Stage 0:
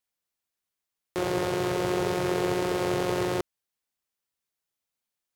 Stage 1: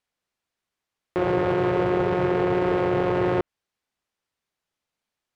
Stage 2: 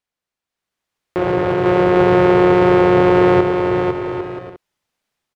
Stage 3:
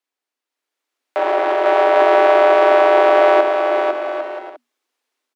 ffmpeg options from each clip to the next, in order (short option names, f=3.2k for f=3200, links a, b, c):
-filter_complex "[0:a]aemphasis=mode=reproduction:type=50fm,acrossover=split=3000[a][b];[b]acompressor=threshold=-60dB:ratio=4:attack=1:release=60[c];[a][c]amix=inputs=2:normalize=0,alimiter=limit=-19.5dB:level=0:latency=1:release=18,volume=7dB"
-filter_complex "[0:a]dynaudnorm=f=470:g=3:m=8dB,asplit=2[a][b];[b]aecho=0:1:500|800|980|1088|1153:0.631|0.398|0.251|0.158|0.1[c];[a][c]amix=inputs=2:normalize=0,volume=-2.5dB"
-af "afreqshift=240"